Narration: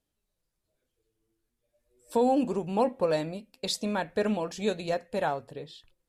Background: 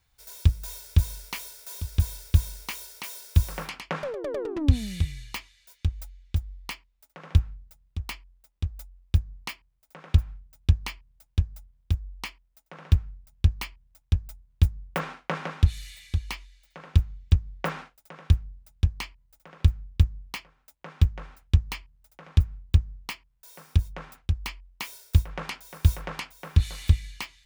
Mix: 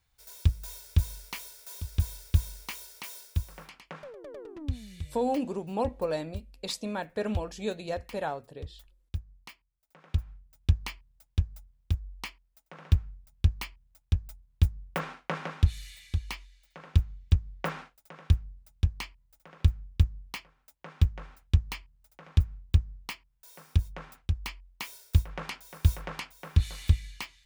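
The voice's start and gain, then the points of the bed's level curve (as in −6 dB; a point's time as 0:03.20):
3.00 s, −4.0 dB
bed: 0:03.21 −4 dB
0:03.46 −12.5 dB
0:09.74 −12.5 dB
0:10.74 −3 dB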